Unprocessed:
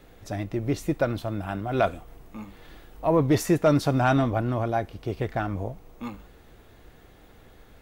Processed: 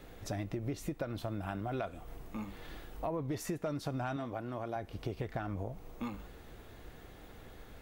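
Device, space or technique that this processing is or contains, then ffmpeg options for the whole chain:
serial compression, peaks first: -filter_complex "[0:a]acompressor=threshold=-30dB:ratio=4,acompressor=threshold=-37dB:ratio=2,asettb=1/sr,asplit=3[link_01][link_02][link_03];[link_01]atrim=end=4.164[link_04];[link_02]atrim=start=4.16:end=4.76,asetpts=PTS-STARTPTS,afade=type=in:duration=0.004:curve=qsin,afade=type=out:start_time=0.596:duration=0.004:curve=qsin,highpass=frequency=240:poles=1[link_05];[link_03]atrim=start=4.756[link_06];[link_04][link_05]acrossfade=duration=0.004:curve1=hsin:curve2=qsin[link_07];[link_07][link_06]acrossfade=duration=0.004:curve1=qsin:curve2=hsin"

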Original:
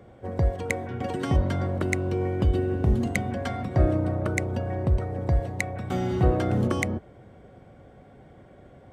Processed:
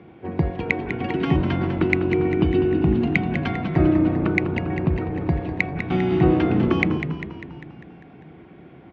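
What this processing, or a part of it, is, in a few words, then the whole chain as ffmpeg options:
frequency-shifting delay pedal into a guitar cabinet: -filter_complex "[0:a]asplit=8[link_01][link_02][link_03][link_04][link_05][link_06][link_07][link_08];[link_02]adelay=199,afreqshift=-54,volume=-8.5dB[link_09];[link_03]adelay=398,afreqshift=-108,volume=-13.1dB[link_10];[link_04]adelay=597,afreqshift=-162,volume=-17.7dB[link_11];[link_05]adelay=796,afreqshift=-216,volume=-22.2dB[link_12];[link_06]adelay=995,afreqshift=-270,volume=-26.8dB[link_13];[link_07]adelay=1194,afreqshift=-324,volume=-31.4dB[link_14];[link_08]adelay=1393,afreqshift=-378,volume=-36dB[link_15];[link_01][link_09][link_10][link_11][link_12][link_13][link_14][link_15]amix=inputs=8:normalize=0,highpass=85,equalizer=frequency=110:width_type=q:width=4:gain=-7,equalizer=frequency=160:width_type=q:width=4:gain=9,equalizer=frequency=330:width_type=q:width=4:gain=9,equalizer=frequency=560:width_type=q:width=4:gain=-10,equalizer=frequency=900:width_type=q:width=4:gain=3,equalizer=frequency=2500:width_type=q:width=4:gain=10,lowpass=frequency=4000:width=0.5412,lowpass=frequency=4000:width=1.3066,volume=3dB"

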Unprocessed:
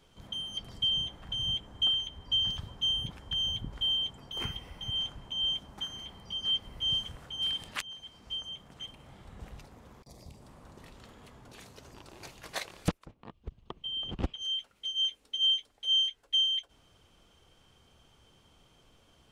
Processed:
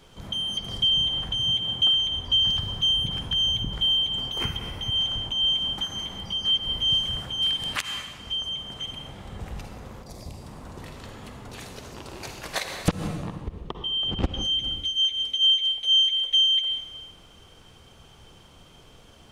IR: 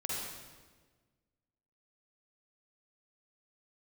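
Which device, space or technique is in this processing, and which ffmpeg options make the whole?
ducked reverb: -filter_complex "[0:a]asplit=3[link_01][link_02][link_03];[1:a]atrim=start_sample=2205[link_04];[link_02][link_04]afir=irnorm=-1:irlink=0[link_05];[link_03]apad=whole_len=851732[link_06];[link_05][link_06]sidechaincompress=threshold=-43dB:ratio=8:attack=16:release=109,volume=-3dB[link_07];[link_01][link_07]amix=inputs=2:normalize=0,asettb=1/sr,asplit=3[link_08][link_09][link_10];[link_08]atrim=end=1.424[link_11];[link_09]atrim=start=1.42:end=1.97,asetpts=PTS-STARTPTS,afade=type=in:duration=0.004:curve=qsin,afade=type=out:start_time=0.546:duration=0.004:curve=qsin,highpass=90[link_12];[link_10]atrim=start=1.966[link_13];[link_11][link_12]acrossfade=duration=0.004:curve1=hsin:curve2=qsin[link_14];[link_14][link_13]acrossfade=duration=0.004:curve1=qsin:curve2=hsin,volume=6dB"

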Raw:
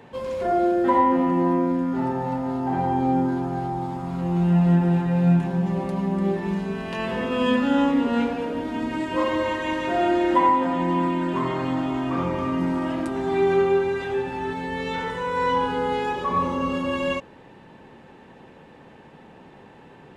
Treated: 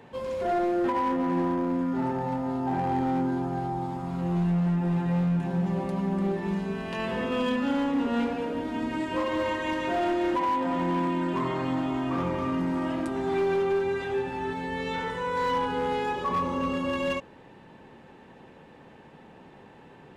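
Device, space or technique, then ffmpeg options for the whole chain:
limiter into clipper: -af "alimiter=limit=-14dB:level=0:latency=1:release=191,asoftclip=type=hard:threshold=-18.5dB,volume=-3dB"

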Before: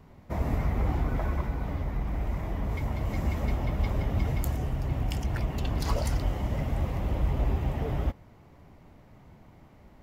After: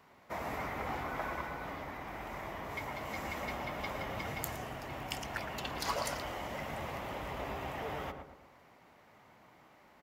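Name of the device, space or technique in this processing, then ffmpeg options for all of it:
filter by subtraction: -filter_complex "[0:a]asplit=2[link_01][link_02];[link_02]adelay=114,lowpass=frequency=1200:poles=1,volume=-4.5dB,asplit=2[link_03][link_04];[link_04]adelay=114,lowpass=frequency=1200:poles=1,volume=0.47,asplit=2[link_05][link_06];[link_06]adelay=114,lowpass=frequency=1200:poles=1,volume=0.47,asplit=2[link_07][link_08];[link_08]adelay=114,lowpass=frequency=1200:poles=1,volume=0.47,asplit=2[link_09][link_10];[link_10]adelay=114,lowpass=frequency=1200:poles=1,volume=0.47,asplit=2[link_11][link_12];[link_12]adelay=114,lowpass=frequency=1200:poles=1,volume=0.47[link_13];[link_01][link_03][link_05][link_07][link_09][link_11][link_13]amix=inputs=7:normalize=0,asplit=2[link_14][link_15];[link_15]lowpass=1400,volume=-1[link_16];[link_14][link_16]amix=inputs=2:normalize=0"

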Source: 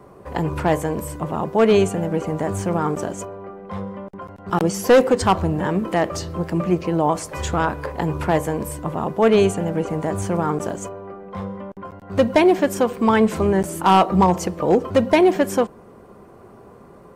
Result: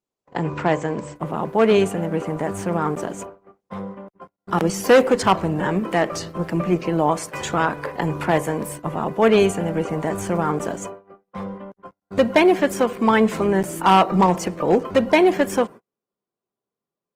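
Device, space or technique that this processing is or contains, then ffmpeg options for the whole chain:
video call: -filter_complex "[0:a]asettb=1/sr,asplit=3[link_01][link_02][link_03];[link_01]atrim=end=4.134[link_04];[link_02]atrim=start=4.13:end=4.74,asetpts=PTS-STARTPTS,afade=type=in:duration=0.004:curve=qsin,afade=type=out:start_time=0.606:duration=0.004:curve=qsin,highpass=frequency=63:width=0.5412,highpass=frequency=63:width=1.3066[link_05];[link_03]atrim=start=4.736[link_06];[link_04][link_05]acrossfade=duration=0.004:curve1=hsin:curve2=qsin[link_07];[link_07][link_06]acrossfade=duration=0.004:curve1=qsin:curve2=hsin,adynamicequalizer=threshold=0.0126:dfrequency=2100:dqfactor=1:tfrequency=2100:tqfactor=1:attack=5:release=100:ratio=0.375:range=2:mode=boostabove:tftype=bell,highpass=frequency=120:width=0.5412,highpass=frequency=120:width=1.3066,dynaudnorm=framelen=400:gausssize=21:maxgain=14.5dB,agate=range=-43dB:threshold=-32dB:ratio=16:detection=peak,volume=-1dB" -ar 48000 -c:a libopus -b:a 20k

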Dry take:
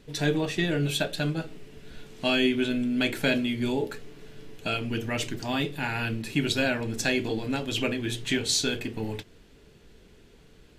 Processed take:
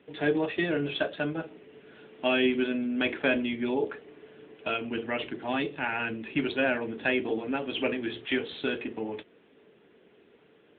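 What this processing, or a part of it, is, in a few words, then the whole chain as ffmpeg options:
telephone: -af "highpass=290,lowpass=3300,highshelf=frequency=3200:gain=-2.5,volume=2dB" -ar 8000 -c:a libopencore_amrnb -b:a 10200

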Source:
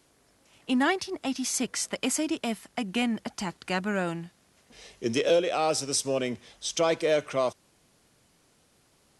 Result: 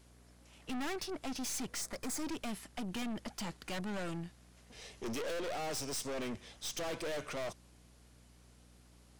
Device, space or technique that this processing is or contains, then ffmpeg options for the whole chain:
valve amplifier with mains hum: -filter_complex "[0:a]aeval=exprs='(tanh(70.8*val(0)+0.5)-tanh(0.5))/70.8':channel_layout=same,aeval=exprs='val(0)+0.000891*(sin(2*PI*60*n/s)+sin(2*PI*2*60*n/s)/2+sin(2*PI*3*60*n/s)/3+sin(2*PI*4*60*n/s)/4+sin(2*PI*5*60*n/s)/5)':channel_layout=same,asettb=1/sr,asplit=3[link_01][link_02][link_03];[link_01]atrim=end=1.814[link_04];[link_02]atrim=start=1.81:end=2.23,asetpts=PTS-STARTPTS,afade=type=in:duration=0.004:curve=qsin,afade=type=out:start_time=0.416:duration=0.004:curve=qsin,equalizer=frequency=2900:width=3.6:gain=-12.5[link_05];[link_03]atrim=start=2.226[link_06];[link_04][link_05]acrossfade=duration=0.004:curve1=hsin:curve2=qsin[link_07];[link_07][link_06]acrossfade=duration=0.004:curve1=qsin:curve2=hsin"

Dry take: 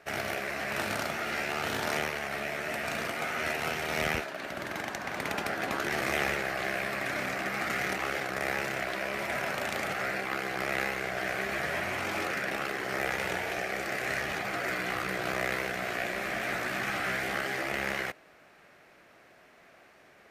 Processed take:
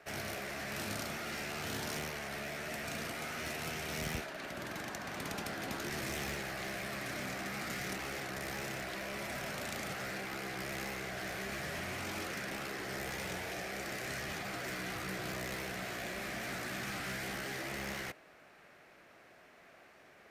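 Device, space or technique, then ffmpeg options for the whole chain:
one-band saturation: -filter_complex "[0:a]acrossover=split=280|4000[link_01][link_02][link_03];[link_02]asoftclip=type=tanh:threshold=-38.5dB[link_04];[link_01][link_04][link_03]amix=inputs=3:normalize=0,volume=-2dB"

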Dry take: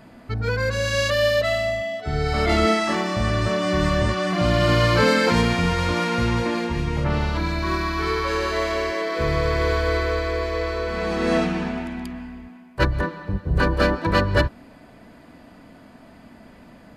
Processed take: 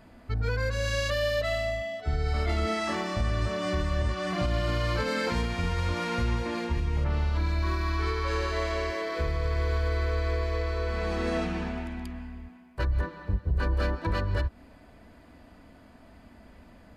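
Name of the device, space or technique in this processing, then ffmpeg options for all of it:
car stereo with a boomy subwoofer: -filter_complex "[0:a]lowshelf=frequency=100:width_type=q:width=1.5:gain=7.5,alimiter=limit=-12dB:level=0:latency=1:release=210,asettb=1/sr,asplit=3[link_01][link_02][link_03];[link_01]atrim=end=7.914[link_04];[link_02]atrim=start=7.91:end=8.9,asetpts=PTS-STARTPTS,afade=type=in:duration=0.004:curve=qsin,afade=type=out:start_time=0.986:duration=0.004:curve=qsin,lowpass=11000[link_05];[link_03]atrim=start=8.896[link_06];[link_04][link_05]acrossfade=duration=0.004:curve1=hsin:curve2=qsin[link_07];[link_07][link_06]acrossfade=duration=0.004:curve1=qsin:curve2=hsin,volume=-6.5dB"

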